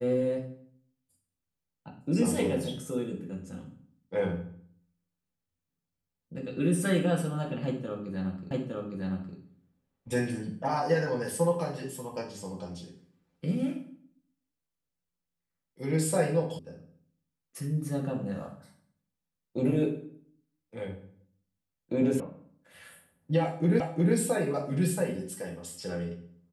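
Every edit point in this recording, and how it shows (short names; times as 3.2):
8.51 repeat of the last 0.86 s
16.59 sound cut off
22.2 sound cut off
23.8 repeat of the last 0.36 s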